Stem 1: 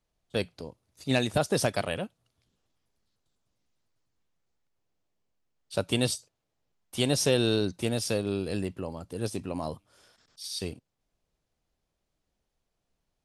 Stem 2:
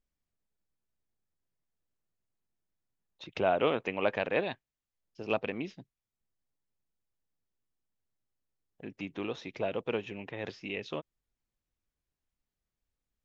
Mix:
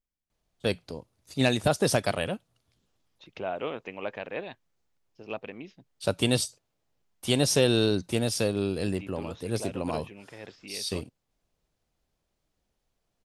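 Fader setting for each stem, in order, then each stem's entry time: +2.0 dB, -5.5 dB; 0.30 s, 0.00 s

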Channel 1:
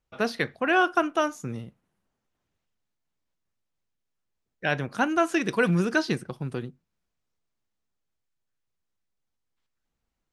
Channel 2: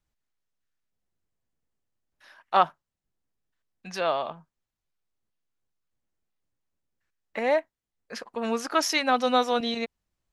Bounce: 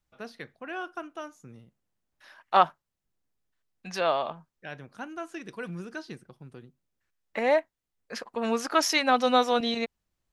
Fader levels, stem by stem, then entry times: -14.5 dB, +0.5 dB; 0.00 s, 0.00 s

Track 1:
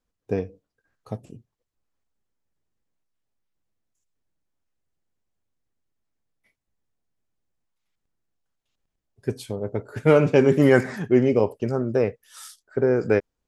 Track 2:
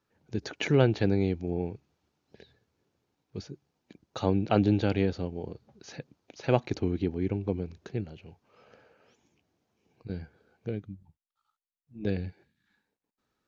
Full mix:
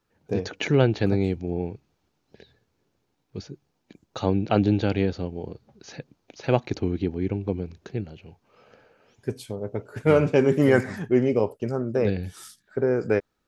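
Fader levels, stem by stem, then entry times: -2.5 dB, +3.0 dB; 0.00 s, 0.00 s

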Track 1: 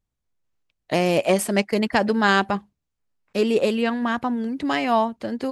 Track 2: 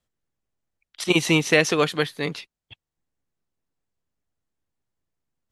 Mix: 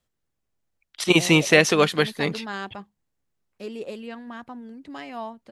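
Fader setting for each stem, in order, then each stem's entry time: -14.5 dB, +2.0 dB; 0.25 s, 0.00 s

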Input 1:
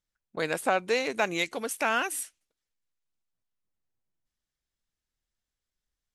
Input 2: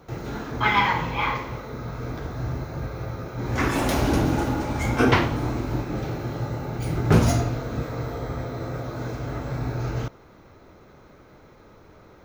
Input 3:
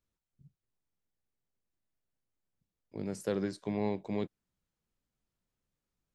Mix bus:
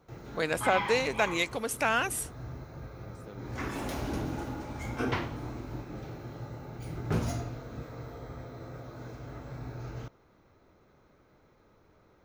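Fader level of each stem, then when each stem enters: -0.5 dB, -12.5 dB, -16.0 dB; 0.00 s, 0.00 s, 0.00 s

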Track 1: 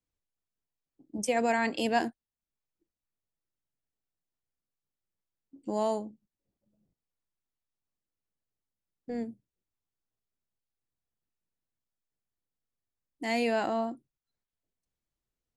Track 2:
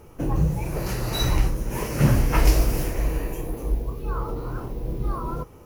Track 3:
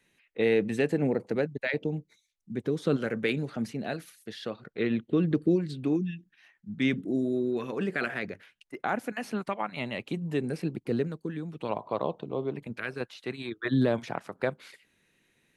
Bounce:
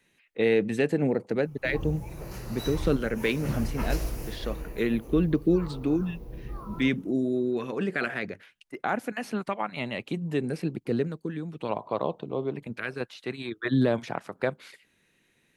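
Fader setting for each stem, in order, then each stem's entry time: mute, -11.5 dB, +1.5 dB; mute, 1.45 s, 0.00 s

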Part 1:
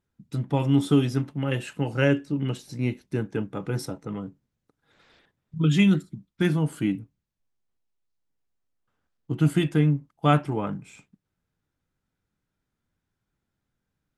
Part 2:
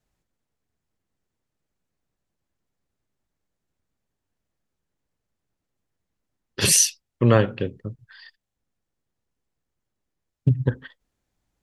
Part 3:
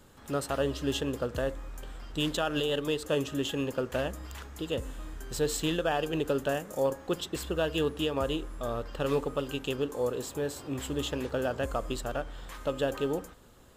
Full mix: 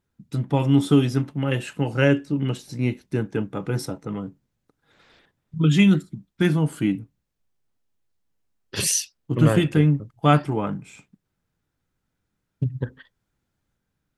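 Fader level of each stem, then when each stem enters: +3.0 dB, -5.5 dB, mute; 0.00 s, 2.15 s, mute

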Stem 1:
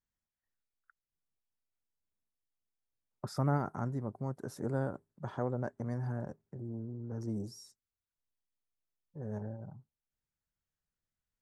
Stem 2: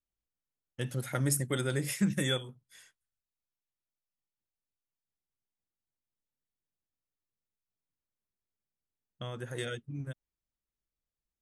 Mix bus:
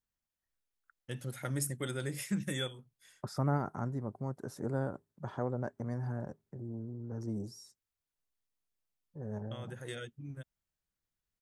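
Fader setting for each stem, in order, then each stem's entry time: -0.5 dB, -5.5 dB; 0.00 s, 0.30 s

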